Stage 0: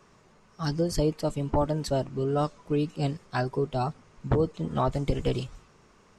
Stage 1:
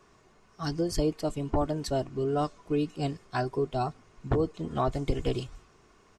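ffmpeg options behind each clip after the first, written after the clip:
-af "aecho=1:1:2.8:0.34,volume=-2dB"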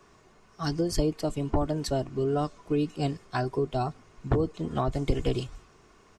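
-filter_complex "[0:a]acrossover=split=280[a][b];[b]acompressor=threshold=-28dB:ratio=6[c];[a][c]amix=inputs=2:normalize=0,volume=2.5dB"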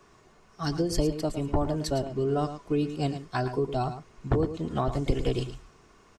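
-af "aecho=1:1:110:0.299"

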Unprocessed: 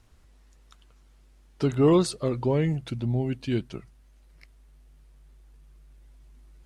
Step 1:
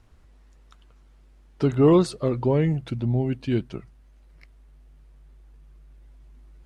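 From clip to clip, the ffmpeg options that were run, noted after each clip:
-af "highshelf=f=3.4k:g=-8.5,volume=3dB"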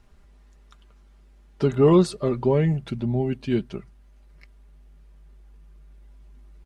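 -af "aecho=1:1:5:0.44"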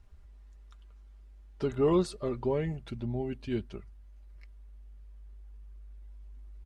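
-af "lowshelf=f=110:t=q:w=3:g=7,volume=-8dB"

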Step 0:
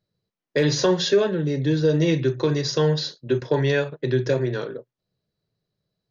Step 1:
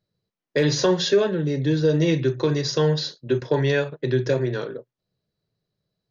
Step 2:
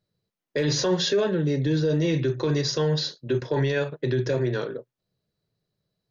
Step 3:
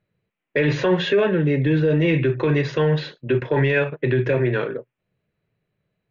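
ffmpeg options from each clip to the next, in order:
-af anull
-af "alimiter=limit=-15.5dB:level=0:latency=1:release=11"
-af "aresample=16000,aresample=44100,highshelf=f=3.6k:t=q:w=3:g=-13.5,acontrast=41,volume=-1dB"

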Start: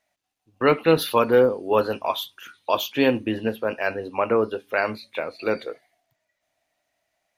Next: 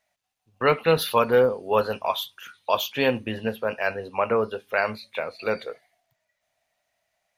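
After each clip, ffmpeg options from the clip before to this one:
-af "equalizer=f=310:t=o:w=0.48:g=-12"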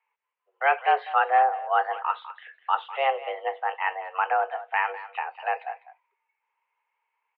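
-filter_complex "[0:a]asplit=2[a][b];[b]adelay=200,highpass=300,lowpass=3.4k,asoftclip=type=hard:threshold=-16.5dB,volume=-13dB[c];[a][c]amix=inputs=2:normalize=0,highpass=f=170:t=q:w=0.5412,highpass=f=170:t=q:w=1.307,lowpass=f=2.4k:t=q:w=0.5176,lowpass=f=2.4k:t=q:w=0.7071,lowpass=f=2.4k:t=q:w=1.932,afreqshift=270,volume=-1.5dB"

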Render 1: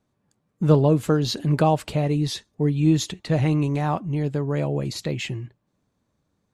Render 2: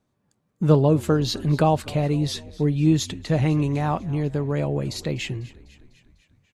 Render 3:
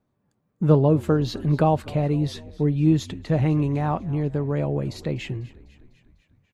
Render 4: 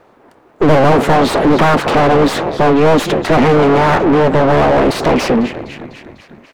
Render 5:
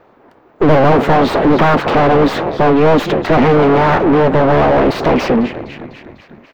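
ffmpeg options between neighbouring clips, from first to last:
-filter_complex "[0:a]asplit=6[a][b][c][d][e][f];[b]adelay=249,afreqshift=-53,volume=-20.5dB[g];[c]adelay=498,afreqshift=-106,volume=-24.7dB[h];[d]adelay=747,afreqshift=-159,volume=-28.8dB[i];[e]adelay=996,afreqshift=-212,volume=-33dB[j];[f]adelay=1245,afreqshift=-265,volume=-37.1dB[k];[a][g][h][i][j][k]amix=inputs=6:normalize=0"
-af "equalizer=f=8k:t=o:w=2.7:g=-10"
-filter_complex "[0:a]aeval=exprs='abs(val(0))':c=same,asplit=2[a][b];[b]highpass=f=720:p=1,volume=38dB,asoftclip=type=tanh:threshold=-6.5dB[c];[a][c]amix=inputs=2:normalize=0,lowpass=f=1.1k:p=1,volume=-6dB,volume=5dB"
-af "equalizer=f=9.4k:w=0.86:g=-14.5"

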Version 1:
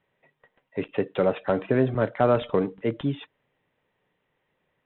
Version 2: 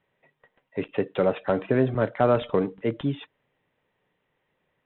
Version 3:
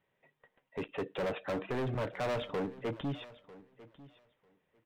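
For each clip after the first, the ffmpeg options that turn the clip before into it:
-af anull
-af "asoftclip=type=hard:threshold=-26dB,aecho=1:1:947|1894:0.112|0.0168,volume=-5dB"

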